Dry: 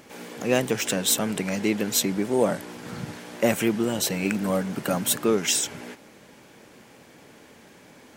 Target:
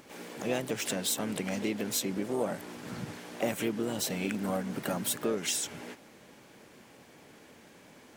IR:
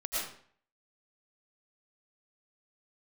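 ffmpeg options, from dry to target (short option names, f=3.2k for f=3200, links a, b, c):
-filter_complex "[0:a]acompressor=threshold=-26dB:ratio=2,asplit=3[a][b][c];[b]asetrate=52444,aresample=44100,atempo=0.840896,volume=-13dB[d];[c]asetrate=58866,aresample=44100,atempo=0.749154,volume=-10dB[e];[a][d][e]amix=inputs=3:normalize=0,volume=-5dB"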